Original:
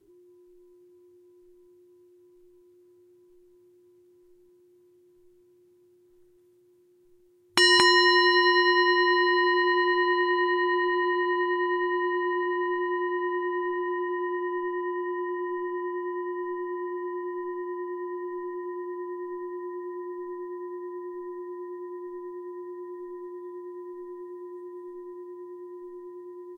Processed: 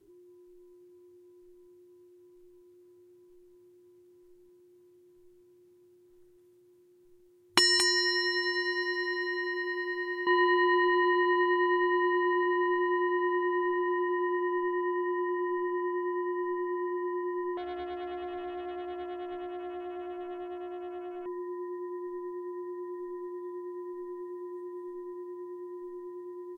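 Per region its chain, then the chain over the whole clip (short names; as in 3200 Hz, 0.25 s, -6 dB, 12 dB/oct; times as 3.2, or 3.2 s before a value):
7.59–10.27 pre-emphasis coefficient 0.8 + comb 2.6 ms, depth 60%
17.57–21.26 bell 800 Hz -10.5 dB 0.97 oct + Doppler distortion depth 0.5 ms
whole clip: dry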